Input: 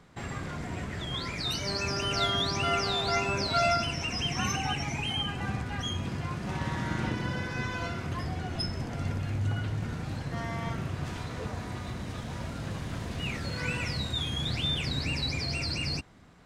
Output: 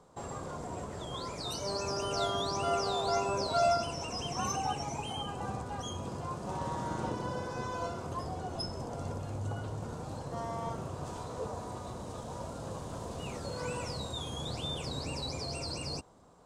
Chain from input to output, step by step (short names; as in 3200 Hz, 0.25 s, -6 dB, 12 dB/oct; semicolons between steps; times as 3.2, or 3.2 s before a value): graphic EQ 500/1000/2000/8000 Hz +10/+10/-11/+10 dB; gain -8 dB